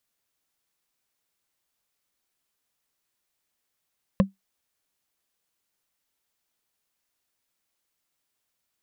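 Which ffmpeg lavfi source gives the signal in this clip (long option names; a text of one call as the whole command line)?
ffmpeg -f lavfi -i "aevalsrc='0.282*pow(10,-3*t/0.15)*sin(2*PI*194*t)+0.168*pow(10,-3*t/0.044)*sin(2*PI*534.9*t)+0.1*pow(10,-3*t/0.02)*sin(2*PI*1048.4*t)+0.0596*pow(10,-3*t/0.011)*sin(2*PI*1733*t)+0.0355*pow(10,-3*t/0.007)*sin(2*PI*2588*t)':duration=0.45:sample_rate=44100" out.wav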